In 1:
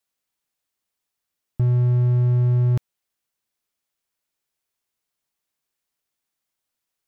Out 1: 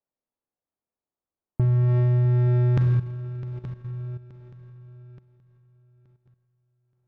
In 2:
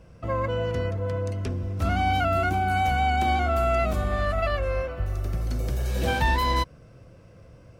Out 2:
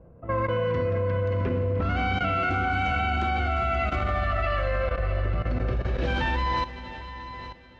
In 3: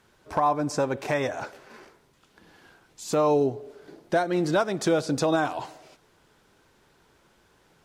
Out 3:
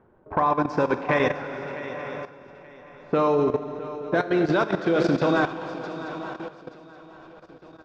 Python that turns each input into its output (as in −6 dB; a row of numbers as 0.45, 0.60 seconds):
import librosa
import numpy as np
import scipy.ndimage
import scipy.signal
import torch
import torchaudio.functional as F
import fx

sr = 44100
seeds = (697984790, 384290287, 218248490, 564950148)

p1 = fx.bass_treble(x, sr, bass_db=-4, treble_db=-10)
p2 = fx.env_lowpass(p1, sr, base_hz=740.0, full_db=-20.0)
p3 = fx.rider(p2, sr, range_db=5, speed_s=0.5)
p4 = p2 + F.gain(torch.from_numpy(p3), 0.5).numpy()
p5 = fx.dynamic_eq(p4, sr, hz=690.0, q=1.9, threshold_db=-33.0, ratio=4.0, max_db=-7)
p6 = scipy.signal.sosfilt(scipy.signal.butter(4, 6600.0, 'lowpass', fs=sr, output='sos'), p5)
p7 = fx.comb_fb(p6, sr, f0_hz=84.0, decay_s=0.49, harmonics='all', damping=0.0, mix_pct=40)
p8 = fx.echo_swing(p7, sr, ms=875, ratio=3, feedback_pct=34, wet_db=-11.0)
p9 = fx.rev_schroeder(p8, sr, rt60_s=2.9, comb_ms=32, drr_db=4.0)
p10 = fx.level_steps(p9, sr, step_db=13)
y = p10 * 10.0 ** (-26 / 20.0) / np.sqrt(np.mean(np.square(p10)))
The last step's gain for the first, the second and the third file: +7.0, +1.0, +6.0 decibels